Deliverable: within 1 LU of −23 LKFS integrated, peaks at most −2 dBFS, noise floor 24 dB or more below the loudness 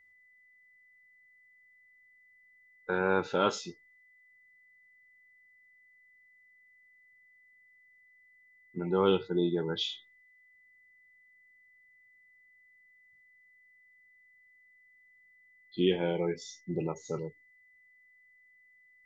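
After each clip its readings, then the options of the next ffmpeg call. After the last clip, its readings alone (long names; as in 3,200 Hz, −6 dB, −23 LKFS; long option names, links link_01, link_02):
interfering tone 2,000 Hz; level of the tone −60 dBFS; integrated loudness −31.5 LKFS; sample peak −13.0 dBFS; target loudness −23.0 LKFS
→ -af "bandreject=frequency=2000:width=30"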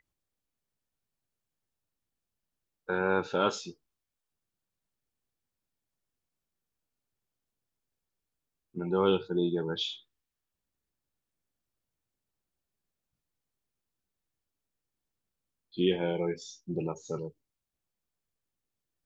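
interfering tone none found; integrated loudness −31.0 LKFS; sample peak −13.0 dBFS; target loudness −23.0 LKFS
→ -af "volume=8dB"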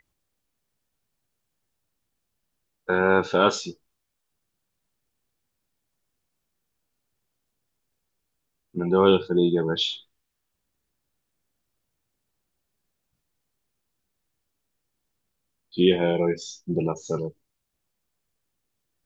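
integrated loudness −23.0 LKFS; sample peak −5.0 dBFS; background noise floor −79 dBFS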